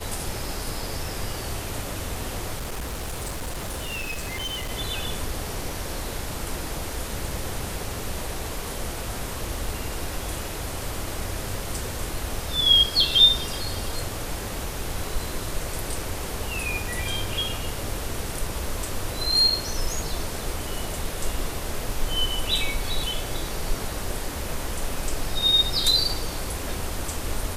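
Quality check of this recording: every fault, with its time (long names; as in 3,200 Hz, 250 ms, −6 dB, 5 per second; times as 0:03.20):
0:02.57–0:04.71: clipping −27 dBFS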